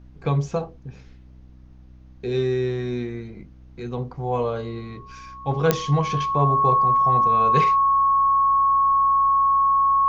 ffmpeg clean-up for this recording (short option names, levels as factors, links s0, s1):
-af "adeclick=t=4,bandreject=f=63:t=h:w=4,bandreject=f=126:t=h:w=4,bandreject=f=189:t=h:w=4,bandreject=f=252:t=h:w=4,bandreject=f=315:t=h:w=4,bandreject=f=1100:w=30,agate=range=0.0891:threshold=0.0126"